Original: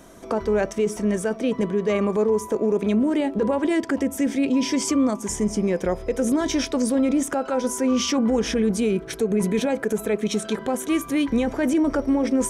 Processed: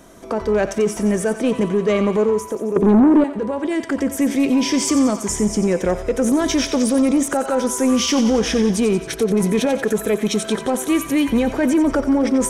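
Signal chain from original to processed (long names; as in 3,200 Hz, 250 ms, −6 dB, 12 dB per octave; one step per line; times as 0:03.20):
0:02.76–0:03.24: low shelf with overshoot 700 Hz +13 dB, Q 1.5
automatic gain control gain up to 4 dB
soft clipping −10 dBFS, distortion −14 dB
on a send: feedback echo with a high-pass in the loop 90 ms, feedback 66%, high-pass 980 Hz, level −9.5 dB
on the sum: level +1.5 dB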